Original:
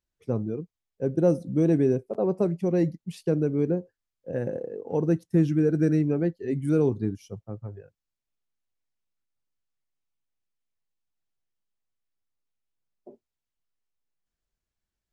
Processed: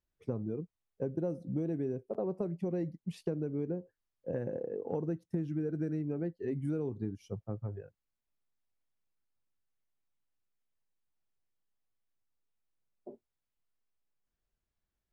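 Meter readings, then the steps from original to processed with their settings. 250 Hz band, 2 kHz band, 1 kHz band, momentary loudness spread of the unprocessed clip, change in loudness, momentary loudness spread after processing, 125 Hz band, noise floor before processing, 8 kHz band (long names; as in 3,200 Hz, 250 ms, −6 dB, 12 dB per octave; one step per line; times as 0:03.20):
−11.0 dB, −12.5 dB, −9.5 dB, 12 LU, −11.0 dB, 9 LU, −10.5 dB, below −85 dBFS, can't be measured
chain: high-shelf EQ 3,300 Hz −9.5 dB
downward compressor 6 to 1, threshold −32 dBFS, peak gain reduction 15 dB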